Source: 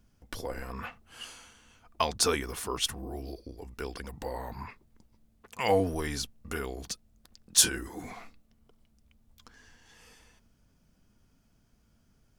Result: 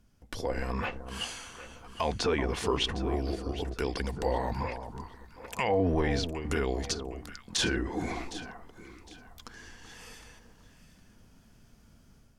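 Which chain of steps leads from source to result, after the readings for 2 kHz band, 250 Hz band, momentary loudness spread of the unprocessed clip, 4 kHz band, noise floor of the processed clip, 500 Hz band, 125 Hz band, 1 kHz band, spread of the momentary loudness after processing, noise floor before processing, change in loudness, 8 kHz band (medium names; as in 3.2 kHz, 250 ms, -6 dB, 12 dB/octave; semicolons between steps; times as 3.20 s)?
+2.5 dB, +5.5 dB, 19 LU, -1.5 dB, -59 dBFS, +2.5 dB, +6.0 dB, +1.5 dB, 20 LU, -68 dBFS, -1.0 dB, -10.0 dB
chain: low-pass that closes with the level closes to 2.3 kHz, closed at -28 dBFS; level rider gain up to 8 dB; peak limiter -17 dBFS, peak gain reduction 11.5 dB; echo whose repeats swap between lows and highs 380 ms, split 1.2 kHz, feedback 53%, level -9 dB; dynamic bell 1.3 kHz, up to -6 dB, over -48 dBFS, Q 2.9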